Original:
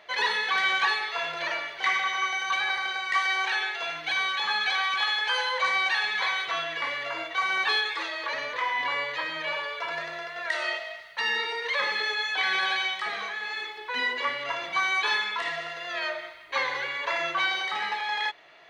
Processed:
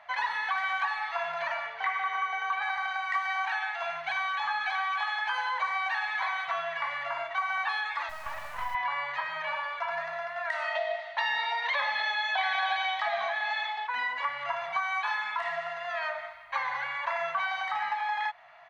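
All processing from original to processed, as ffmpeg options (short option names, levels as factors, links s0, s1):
-filter_complex "[0:a]asettb=1/sr,asplit=3[s0][s1][s2];[s0]atrim=end=1.664[s3];[s1]atrim=start=1.66:end=2.62,asetpts=PTS-STARTPTS,afade=t=in:d=0.004:c=qsin,afade=t=out:st=0.956:d=0.004:c=qsin,acrossover=split=3500[s4][s5];[s5]acompressor=threshold=0.00891:ratio=4:attack=1:release=60[s6];[s4][s6]amix=inputs=2:normalize=0,aeval=exprs='val(0)+0.0112*sin(2*PI*450*n/s)':c=same,highpass=100,lowpass=5700[s7];[s2]atrim=start=2.616[s8];[s3][s7]acrossfade=d=0.004:c1=hsin:c2=qsin[s9];[s9][s8]acrossfade=d=0.004:c1=qsin:c2=hsin,asettb=1/sr,asplit=3[s10][s11][s12];[s10]atrim=end=8.094[s13];[s11]atrim=start=8.09:end=8.75,asetpts=PTS-STARTPTS,afade=t=in:d=0.004:c=qsin,afade=t=out:st=0.656:d=0.004:c=qsin,aemphasis=mode=reproduction:type=75kf,acrusher=bits=4:dc=4:mix=0:aa=0.000001[s14];[s12]atrim=start=8.746[s15];[s13][s14]acrossfade=d=0.004:c1=hsin:c2=qsin[s16];[s16][s15]acrossfade=d=0.004:c1=qsin:c2=hsin,asettb=1/sr,asplit=3[s17][s18][s19];[s17]atrim=end=10.754[s20];[s18]atrim=start=10.75:end=13.87,asetpts=PTS-STARTPTS,afade=t=in:d=0.004:c=qsin,afade=t=out:st=3.116:d=0.004:c=qsin,acontrast=50,highpass=160,equalizer=f=420:t=q:w=4:g=-4,equalizer=f=650:t=q:w=4:g=9,equalizer=f=1300:t=q:w=4:g=-6,equalizer=f=3600:t=q:w=4:g=8,lowpass=f=6900:w=0.5412,lowpass=f=6900:w=1.3066[s21];[s19]atrim=start=13.866[s22];[s20][s21]acrossfade=d=0.004:c1=hsin:c2=qsin[s23];[s23][s22]acrossfade=d=0.004:c1=qsin:c2=hsin,firequalizer=gain_entry='entry(100,0);entry(370,-27);entry(700,5);entry(3500,-10)':delay=0.05:min_phase=1,acompressor=threshold=0.0398:ratio=3"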